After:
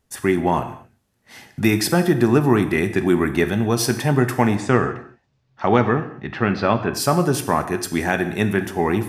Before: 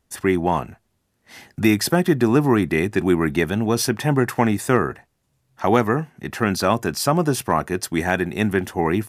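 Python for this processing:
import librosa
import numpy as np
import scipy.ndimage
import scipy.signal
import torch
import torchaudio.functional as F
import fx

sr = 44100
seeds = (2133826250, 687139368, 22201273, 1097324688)

y = fx.lowpass(x, sr, hz=fx.line((4.55, 7200.0), (6.93, 3300.0)), slope=24, at=(4.55, 6.93), fade=0.02)
y = fx.rev_gated(y, sr, seeds[0], gate_ms=270, shape='falling', drr_db=8.0)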